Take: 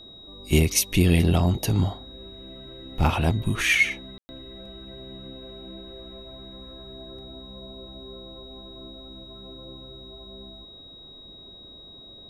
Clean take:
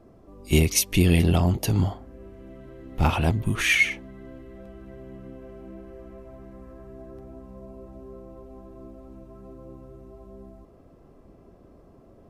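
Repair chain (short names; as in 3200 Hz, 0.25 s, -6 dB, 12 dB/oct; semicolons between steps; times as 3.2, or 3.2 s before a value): notch 3800 Hz, Q 30; room tone fill 4.18–4.29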